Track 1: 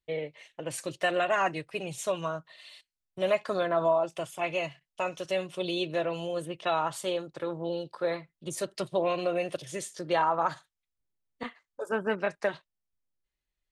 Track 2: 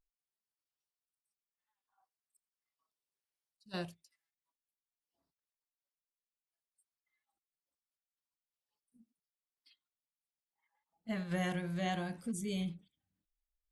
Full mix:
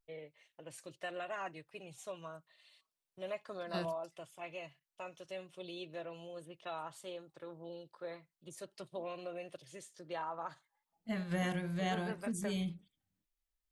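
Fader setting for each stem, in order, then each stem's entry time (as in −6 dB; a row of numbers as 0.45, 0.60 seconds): −15.0, 0.0 decibels; 0.00, 0.00 seconds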